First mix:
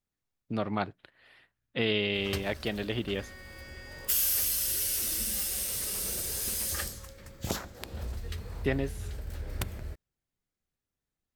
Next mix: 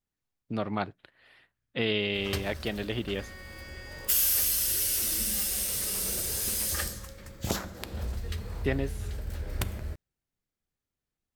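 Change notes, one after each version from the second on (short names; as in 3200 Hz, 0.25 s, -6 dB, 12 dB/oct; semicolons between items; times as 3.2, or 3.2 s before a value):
background: send +10.5 dB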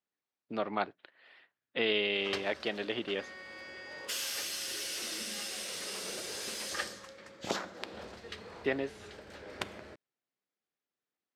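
master: add BPF 320–4800 Hz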